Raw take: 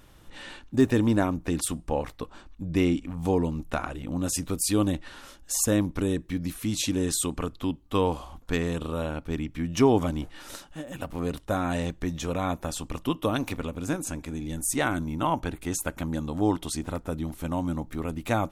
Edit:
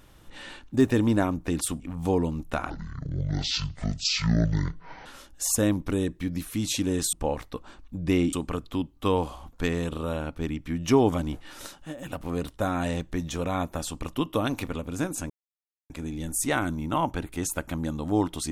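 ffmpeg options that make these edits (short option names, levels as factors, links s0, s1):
-filter_complex "[0:a]asplit=7[s0][s1][s2][s3][s4][s5][s6];[s0]atrim=end=1.802[s7];[s1]atrim=start=2.998:end=3.904[s8];[s2]atrim=start=3.9:end=5.15,asetpts=PTS-STARTPTS,asetrate=23373,aresample=44100,atrim=end_sample=104009,asetpts=PTS-STARTPTS[s9];[s3]atrim=start=5.146:end=7.222[s10];[s4]atrim=start=1.798:end=3.002[s11];[s5]atrim=start=7.218:end=14.19,asetpts=PTS-STARTPTS,afade=t=out:st=6.968:d=0.004:c=hsin,apad=pad_dur=0.6[s12];[s6]atrim=start=14.19,asetpts=PTS-STARTPTS,afade=t=in:d=0.004:c=hsin[s13];[s7][s8]acrossfade=d=0.004:c1=hsin:c2=hsin[s14];[s14][s9]acrossfade=d=0.004:c1=hsin:c2=hsin[s15];[s15][s10]acrossfade=d=0.004:c1=hsin:c2=hsin[s16];[s16][s11]acrossfade=d=0.004:c1=hsin:c2=hsin[s17];[s12][s13]concat=n=2:v=0:a=1[s18];[s17][s18]acrossfade=d=0.004:c1=hsin:c2=hsin"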